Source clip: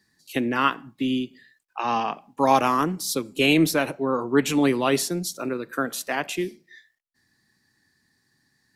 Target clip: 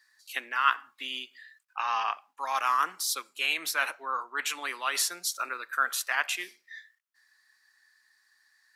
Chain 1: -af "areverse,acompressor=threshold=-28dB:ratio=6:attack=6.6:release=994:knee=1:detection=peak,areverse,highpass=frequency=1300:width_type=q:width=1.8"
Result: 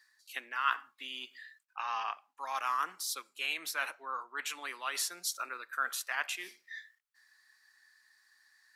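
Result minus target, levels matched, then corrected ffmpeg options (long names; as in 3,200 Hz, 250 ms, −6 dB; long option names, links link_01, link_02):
downward compressor: peak gain reduction +6.5 dB
-af "areverse,acompressor=threshold=-20dB:ratio=6:attack=6.6:release=994:knee=1:detection=peak,areverse,highpass=frequency=1300:width_type=q:width=1.8"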